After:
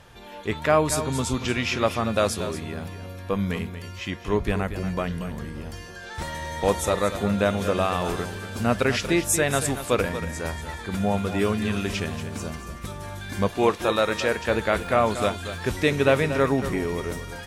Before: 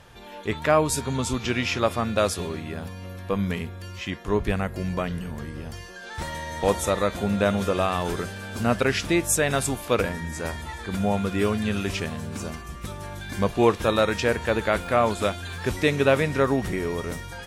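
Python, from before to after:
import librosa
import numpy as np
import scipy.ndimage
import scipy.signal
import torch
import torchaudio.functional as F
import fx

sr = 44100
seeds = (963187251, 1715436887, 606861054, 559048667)

y = fx.low_shelf(x, sr, hz=210.0, db=-9.0, at=(13.48, 14.47))
y = y + 10.0 ** (-11.0 / 20.0) * np.pad(y, (int(233 * sr / 1000.0), 0))[:len(y)]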